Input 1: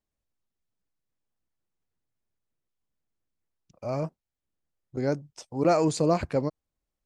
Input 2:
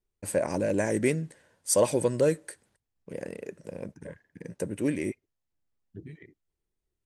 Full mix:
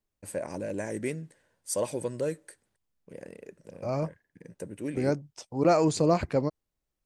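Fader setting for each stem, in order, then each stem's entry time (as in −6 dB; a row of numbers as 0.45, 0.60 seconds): 0.0, −7.0 decibels; 0.00, 0.00 seconds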